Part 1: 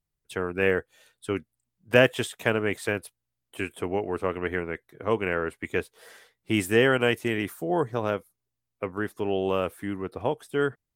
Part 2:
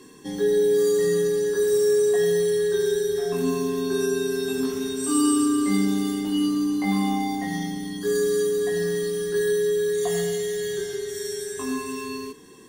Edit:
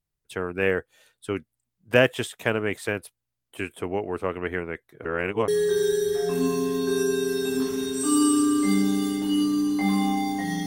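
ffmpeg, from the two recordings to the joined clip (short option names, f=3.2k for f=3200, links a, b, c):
-filter_complex "[0:a]apad=whole_dur=10.66,atrim=end=10.66,asplit=2[a][b];[a]atrim=end=5.052[c];[b]atrim=start=5.048:end=5.482,asetpts=PTS-STARTPTS,areverse[d];[1:a]atrim=start=2.508:end=7.69[e];[c][d]acrossfade=d=0.004:c1=hsin:c2=hsin[f];[f][e]acrossfade=d=0.004:c1=hsin:c2=hsin"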